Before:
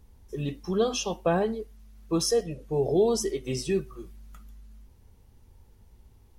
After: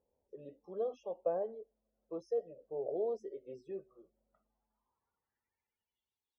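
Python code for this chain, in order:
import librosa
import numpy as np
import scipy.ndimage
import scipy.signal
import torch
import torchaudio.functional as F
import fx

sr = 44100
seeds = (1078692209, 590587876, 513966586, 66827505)

y = fx.spec_topn(x, sr, count=64)
y = fx.filter_sweep_bandpass(y, sr, from_hz=560.0, to_hz=3900.0, start_s=4.27, end_s=6.18, q=5.1)
y = y * librosa.db_to_amplitude(-3.5)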